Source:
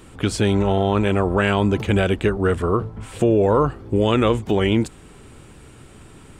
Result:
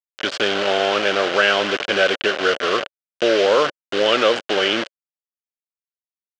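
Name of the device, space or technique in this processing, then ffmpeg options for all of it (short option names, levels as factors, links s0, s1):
hand-held game console: -af "acrusher=bits=3:mix=0:aa=0.000001,highpass=470,equalizer=f=560:t=q:w=4:g=7,equalizer=f=930:t=q:w=4:g=-6,equalizer=f=1500:t=q:w=4:g=7,equalizer=f=3000:t=q:w=4:g=8,lowpass=f=5400:w=0.5412,lowpass=f=5400:w=1.3066,volume=1.19"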